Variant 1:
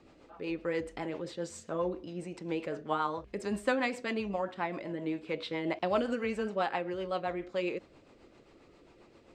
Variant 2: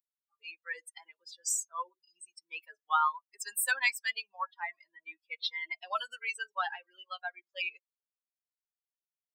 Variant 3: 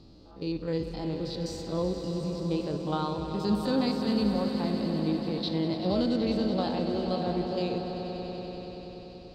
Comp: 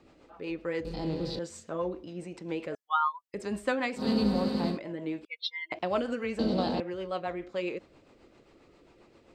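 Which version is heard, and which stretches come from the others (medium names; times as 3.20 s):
1
0.85–1.39 s: from 3
2.75–3.34 s: from 2
4.00–4.74 s: from 3, crossfade 0.10 s
5.25–5.72 s: from 2
6.39–6.80 s: from 3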